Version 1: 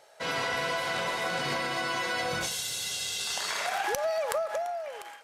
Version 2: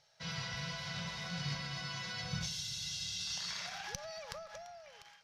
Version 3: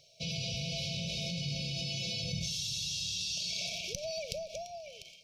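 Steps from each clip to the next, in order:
EQ curve 180 Hz 0 dB, 280 Hz -26 dB, 2600 Hz -13 dB, 5700 Hz -5 dB, 8100 Hz -23 dB; gain +2.5 dB
FFT band-reject 710–2200 Hz; in parallel at +2 dB: negative-ratio compressor -45 dBFS, ratio -1

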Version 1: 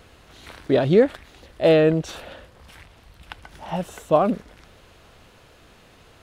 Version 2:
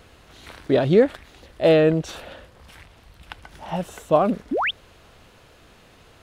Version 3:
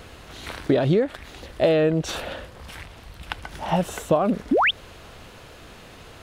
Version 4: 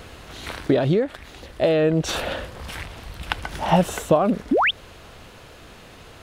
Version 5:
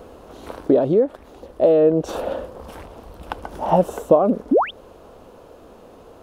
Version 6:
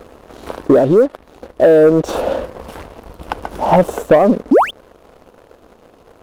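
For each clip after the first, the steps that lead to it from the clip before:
painted sound rise, 4.51–4.71, 220–3800 Hz -22 dBFS
compressor 12:1, threshold -23 dBFS, peak gain reduction 14 dB; gain +7 dB
vocal rider within 3 dB 0.5 s; gain +2.5 dB
ten-band EQ 125 Hz -5 dB, 250 Hz +6 dB, 500 Hz +9 dB, 1000 Hz +5 dB, 2000 Hz -10 dB, 4000 Hz -6 dB, 8000 Hz -4 dB; gain -4.5 dB
sample leveller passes 2

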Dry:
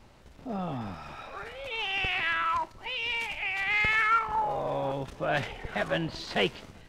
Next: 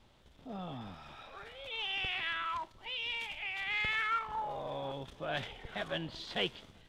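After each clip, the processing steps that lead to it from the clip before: bell 3400 Hz +10.5 dB 0.33 oct; gain -9 dB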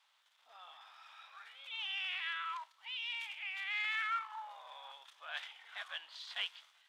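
HPF 1000 Hz 24 dB/oct; gain -3 dB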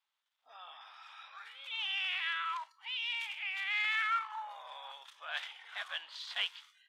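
spectral noise reduction 18 dB; gain +4 dB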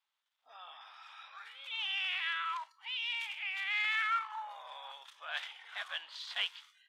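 nothing audible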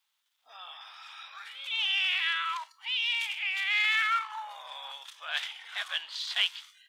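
high shelf 2400 Hz +10.5 dB; gain +1.5 dB

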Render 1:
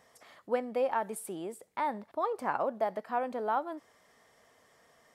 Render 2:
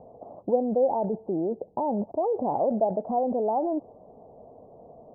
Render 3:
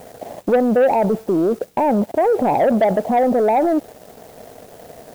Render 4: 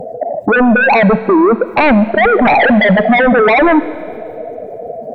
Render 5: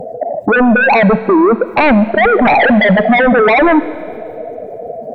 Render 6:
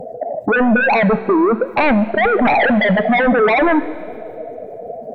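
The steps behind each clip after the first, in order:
steep low-pass 800 Hz 48 dB/oct; in parallel at +1.5 dB: negative-ratio compressor -44 dBFS, ratio -1; on the sum: gain +6.5 dB
in parallel at -9.5 dB: requantised 8-bit, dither triangular; on the sum: sample leveller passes 2; gain +1.5 dB
spectral contrast raised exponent 2.5; sine folder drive 9 dB, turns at -8 dBFS; Schroeder reverb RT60 2.1 s, combs from 26 ms, DRR 14.5 dB; gain +2 dB
nothing audible
flange 1.2 Hz, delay 3.5 ms, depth 4.7 ms, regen +87%

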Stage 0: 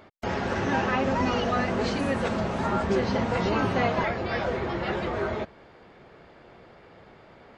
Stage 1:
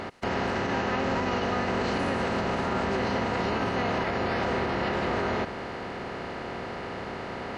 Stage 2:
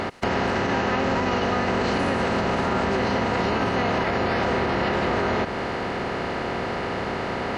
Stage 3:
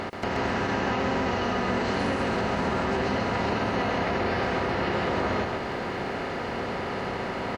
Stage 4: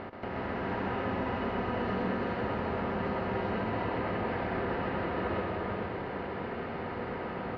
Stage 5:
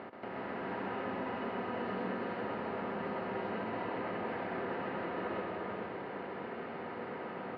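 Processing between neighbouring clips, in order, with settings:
per-bin compression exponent 0.4; limiter -12.5 dBFS, peak gain reduction 6 dB; gain -6 dB
compressor 2:1, threshold -31 dBFS, peak gain reduction 4.5 dB; gain +8.5 dB
crackle 470/s -50 dBFS; echo 0.13 s -3.5 dB; gain -5 dB
air absorption 350 m; non-linear reverb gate 0.45 s rising, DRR 0.5 dB; gain -7.5 dB
BPF 180–4300 Hz; gain -4.5 dB

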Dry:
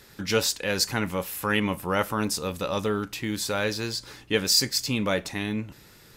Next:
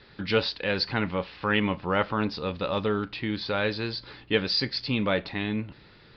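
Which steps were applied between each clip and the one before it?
steep low-pass 4700 Hz 72 dB/oct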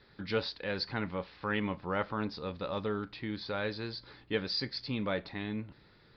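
bell 2800 Hz -6 dB 0.43 oct; gain -7.5 dB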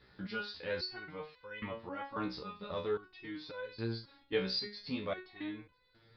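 stepped resonator 3.7 Hz 63–500 Hz; gain +6 dB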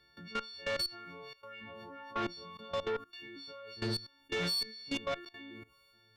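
frequency quantiser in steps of 4 st; level quantiser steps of 18 dB; added harmonics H 2 -10 dB, 5 -15 dB, 6 -28 dB, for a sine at -25 dBFS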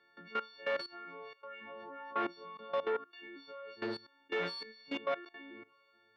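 BPF 340–2100 Hz; gain +2.5 dB

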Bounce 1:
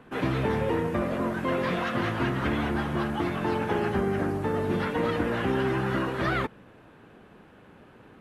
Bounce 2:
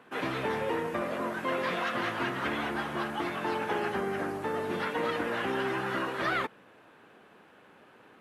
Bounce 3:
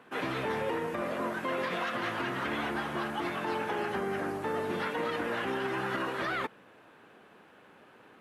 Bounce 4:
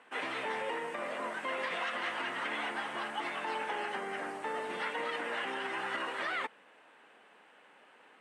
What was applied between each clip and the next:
HPF 570 Hz 6 dB/oct
limiter -23.5 dBFS, peak gain reduction 5.5 dB
speaker cabinet 320–9800 Hz, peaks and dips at 360 Hz -5 dB, 870 Hz +3 dB, 2000 Hz +6 dB, 2900 Hz +5 dB, 8500 Hz +9 dB; gain -4 dB

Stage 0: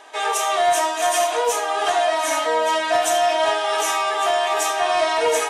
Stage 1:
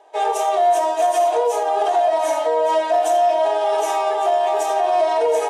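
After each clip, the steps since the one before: band shelf 560 Hz +13.5 dB; limiter -5.5 dBFS, peak gain reduction 8 dB; upward expander 1.5:1, over -32 dBFS; gain -4 dB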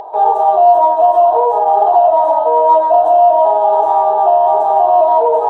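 EQ curve 280 Hz 0 dB, 630 Hz +7 dB, 940 Hz +13 dB, 2200 Hz -23 dB, 3800 Hz -11 dB, 6000 Hz -26 dB, 9600 Hz -23 dB; upward compressor, threshold -18 dBFS; added harmonics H 6 -45 dB, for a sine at 0 dBFS; gain -1 dB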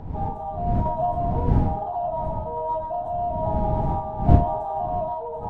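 wind noise 140 Hz -8 dBFS; random-step tremolo; gain -14 dB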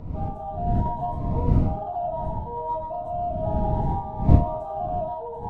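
cascading phaser rising 0.67 Hz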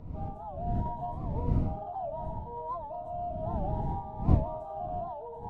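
record warp 78 rpm, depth 160 cents; gain -8 dB

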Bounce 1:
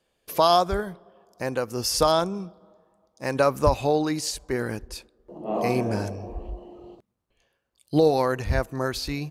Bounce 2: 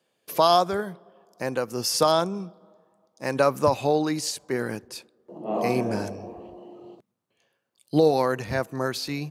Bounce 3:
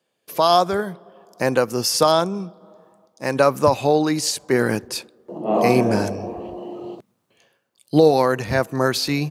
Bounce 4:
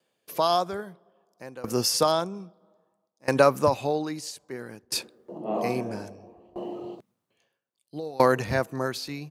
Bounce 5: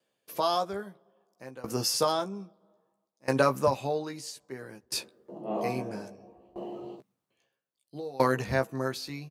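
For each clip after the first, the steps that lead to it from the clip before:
HPF 120 Hz 24 dB/oct
AGC gain up to 13 dB; gain -1 dB
dB-ramp tremolo decaying 0.61 Hz, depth 24 dB
doubler 15 ms -6 dB; gain -4.5 dB

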